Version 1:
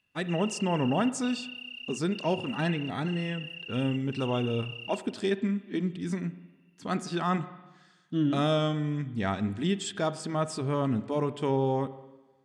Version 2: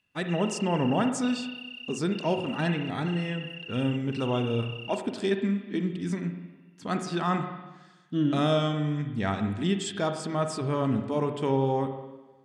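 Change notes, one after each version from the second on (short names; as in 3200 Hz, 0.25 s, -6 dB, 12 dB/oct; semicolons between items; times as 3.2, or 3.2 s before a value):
speech: send +8.0 dB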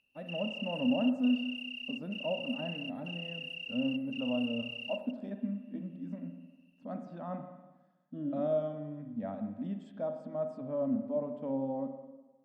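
speech: add double band-pass 380 Hz, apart 1.2 oct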